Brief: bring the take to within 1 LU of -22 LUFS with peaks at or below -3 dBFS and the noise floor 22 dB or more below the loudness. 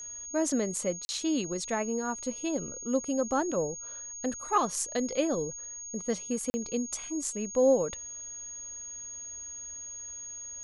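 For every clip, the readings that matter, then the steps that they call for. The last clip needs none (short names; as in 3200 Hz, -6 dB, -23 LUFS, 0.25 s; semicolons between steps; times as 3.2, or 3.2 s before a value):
dropouts 2; longest dropout 40 ms; steady tone 6600 Hz; tone level -39 dBFS; loudness -31.5 LUFS; peak -14.0 dBFS; loudness target -22.0 LUFS
-> interpolate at 1.05/6.5, 40 ms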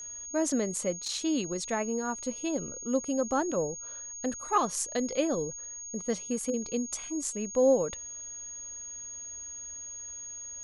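dropouts 0; steady tone 6600 Hz; tone level -39 dBFS
-> notch 6600 Hz, Q 30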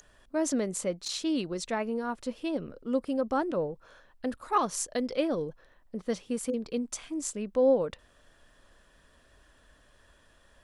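steady tone none; loudness -31.0 LUFS; peak -14.0 dBFS; loudness target -22.0 LUFS
-> gain +9 dB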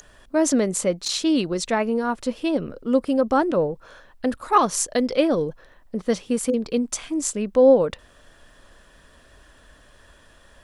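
loudness -22.0 LUFS; peak -5.0 dBFS; noise floor -53 dBFS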